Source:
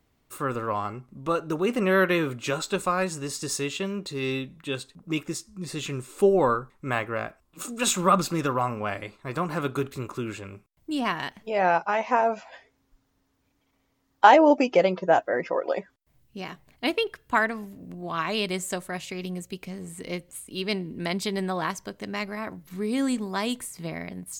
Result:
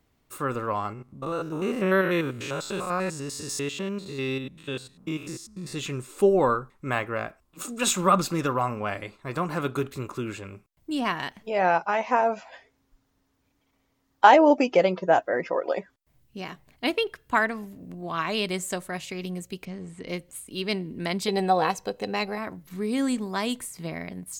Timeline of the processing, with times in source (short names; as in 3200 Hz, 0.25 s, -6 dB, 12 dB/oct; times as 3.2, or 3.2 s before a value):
0.93–5.73 stepped spectrum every 0.1 s
19.65–20.08 air absorption 100 m
21.28–22.38 small resonant body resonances 490/760/2600/4000 Hz, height 15 dB